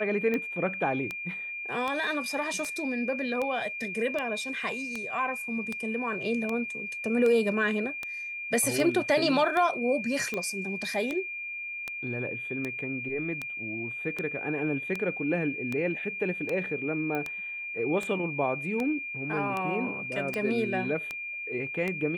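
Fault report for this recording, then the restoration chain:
tick 78 rpm -18 dBFS
tone 2400 Hz -34 dBFS
17.15 pop -20 dBFS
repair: de-click; notch 2400 Hz, Q 30

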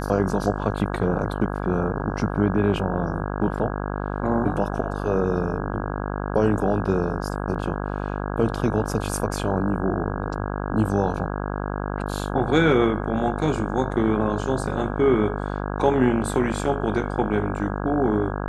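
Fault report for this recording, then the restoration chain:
buzz 50 Hz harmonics 33 -28 dBFS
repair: de-hum 50 Hz, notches 33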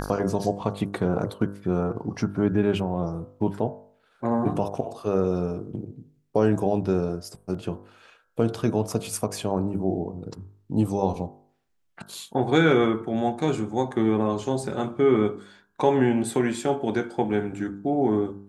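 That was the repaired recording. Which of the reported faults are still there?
none

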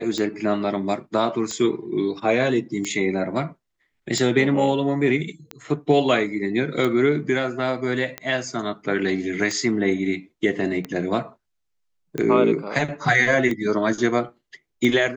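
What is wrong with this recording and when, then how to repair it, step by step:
tick 45 rpm -14 dBFS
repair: de-click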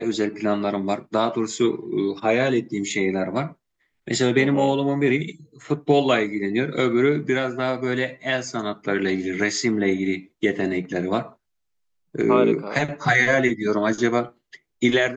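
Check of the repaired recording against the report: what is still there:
none

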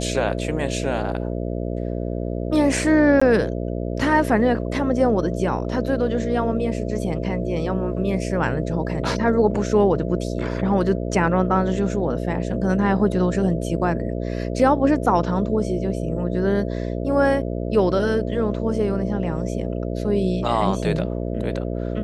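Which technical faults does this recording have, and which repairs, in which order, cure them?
buzz 60 Hz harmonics 11 -26 dBFS
3.2–3.21 gap 15 ms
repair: de-hum 60 Hz, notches 11; interpolate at 3.2, 15 ms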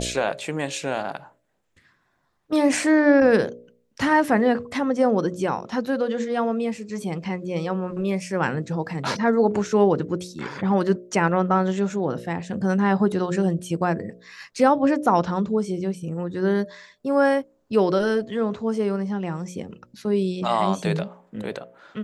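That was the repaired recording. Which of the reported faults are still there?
none

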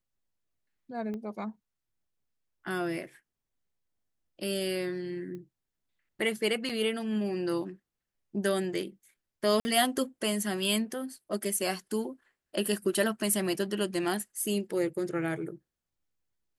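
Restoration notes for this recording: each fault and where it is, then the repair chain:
1.14 pop -28 dBFS
5.35 pop -32 dBFS
6.69–6.7 gap 6.1 ms
9.6–9.65 gap 50 ms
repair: de-click; interpolate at 6.69, 6.1 ms; interpolate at 9.6, 50 ms

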